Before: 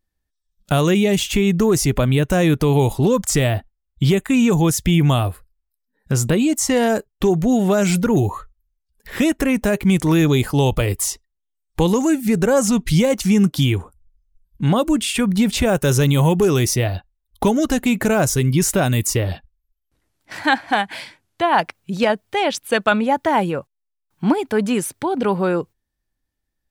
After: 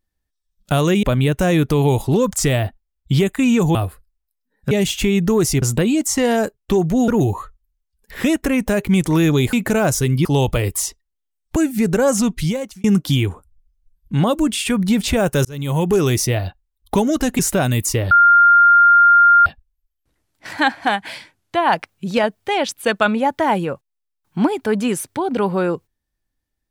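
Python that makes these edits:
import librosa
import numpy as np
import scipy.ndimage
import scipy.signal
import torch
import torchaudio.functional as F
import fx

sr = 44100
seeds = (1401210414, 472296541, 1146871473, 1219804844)

y = fx.edit(x, sr, fx.move(start_s=1.03, length_s=0.91, to_s=6.14),
    fx.cut(start_s=4.66, length_s=0.52),
    fx.cut(start_s=7.6, length_s=0.44),
    fx.cut(start_s=11.8, length_s=0.25),
    fx.fade_out_span(start_s=12.72, length_s=0.61),
    fx.fade_in_span(start_s=15.94, length_s=0.48),
    fx.move(start_s=17.88, length_s=0.72, to_s=10.49),
    fx.insert_tone(at_s=19.32, length_s=1.35, hz=1400.0, db=-7.0), tone=tone)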